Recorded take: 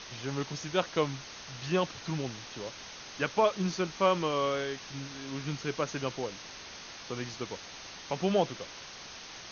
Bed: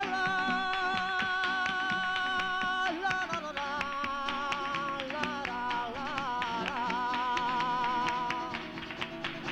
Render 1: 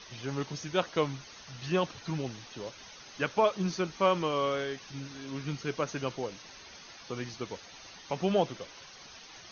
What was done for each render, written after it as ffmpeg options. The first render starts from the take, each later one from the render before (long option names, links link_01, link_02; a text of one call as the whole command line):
ffmpeg -i in.wav -af "afftdn=noise_reduction=9:noise_floor=-46" out.wav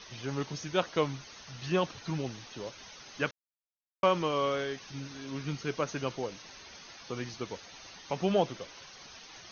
ffmpeg -i in.wav -filter_complex "[0:a]asplit=3[link_01][link_02][link_03];[link_01]atrim=end=3.31,asetpts=PTS-STARTPTS,afade=type=out:start_time=3.306:duration=0.004:curve=hsin[link_04];[link_02]atrim=start=3.31:end=4.03,asetpts=PTS-STARTPTS,volume=0[link_05];[link_03]atrim=start=4.03,asetpts=PTS-STARTPTS,afade=type=in:duration=0.004:curve=hsin[link_06];[link_04][link_05][link_06]concat=n=3:v=0:a=1" out.wav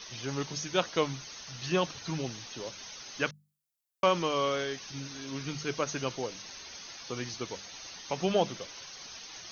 ffmpeg -i in.wav -af "highshelf=frequency=4900:gain=11.5,bandreject=frequency=50:width_type=h:width=6,bandreject=frequency=100:width_type=h:width=6,bandreject=frequency=150:width_type=h:width=6,bandreject=frequency=200:width_type=h:width=6" out.wav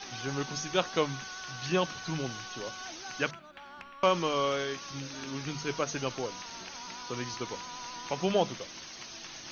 ffmpeg -i in.wav -i bed.wav -filter_complex "[1:a]volume=-14dB[link_01];[0:a][link_01]amix=inputs=2:normalize=0" out.wav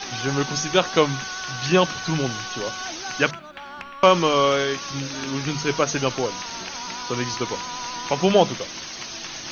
ffmpeg -i in.wav -af "volume=10.5dB,alimiter=limit=-3dB:level=0:latency=1" out.wav